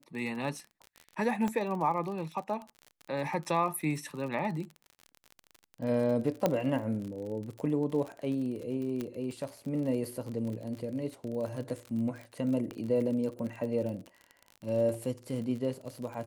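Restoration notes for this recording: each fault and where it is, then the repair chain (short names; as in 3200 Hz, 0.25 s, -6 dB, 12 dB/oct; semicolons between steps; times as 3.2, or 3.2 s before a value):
crackle 41/s -37 dBFS
1.48 pop -20 dBFS
6.46 pop -13 dBFS
9.01 pop -22 dBFS
12.71 pop -26 dBFS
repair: de-click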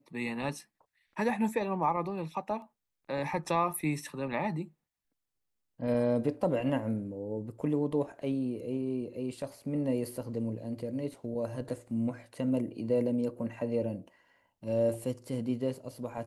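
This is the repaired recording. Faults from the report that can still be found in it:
9.01 pop
12.71 pop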